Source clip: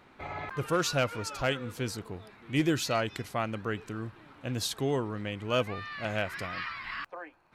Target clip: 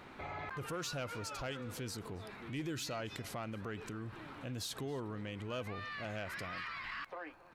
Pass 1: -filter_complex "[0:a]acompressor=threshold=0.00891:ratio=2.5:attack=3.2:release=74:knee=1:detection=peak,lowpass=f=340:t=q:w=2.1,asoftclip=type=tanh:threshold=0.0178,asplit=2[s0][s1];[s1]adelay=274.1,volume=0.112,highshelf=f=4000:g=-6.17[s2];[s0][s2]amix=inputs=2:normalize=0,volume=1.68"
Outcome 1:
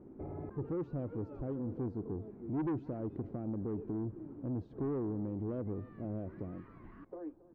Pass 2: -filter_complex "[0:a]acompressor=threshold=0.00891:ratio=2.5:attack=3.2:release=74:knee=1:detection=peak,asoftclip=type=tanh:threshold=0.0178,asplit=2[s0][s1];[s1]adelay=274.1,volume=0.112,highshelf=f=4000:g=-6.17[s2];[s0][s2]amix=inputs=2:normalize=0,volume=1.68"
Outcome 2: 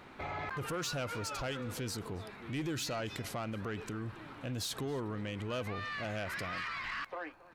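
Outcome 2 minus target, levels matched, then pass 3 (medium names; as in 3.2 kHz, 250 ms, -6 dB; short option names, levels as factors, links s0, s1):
compression: peak gain reduction -5 dB
-filter_complex "[0:a]acompressor=threshold=0.00355:ratio=2.5:attack=3.2:release=74:knee=1:detection=peak,asoftclip=type=tanh:threshold=0.0178,asplit=2[s0][s1];[s1]adelay=274.1,volume=0.112,highshelf=f=4000:g=-6.17[s2];[s0][s2]amix=inputs=2:normalize=0,volume=1.68"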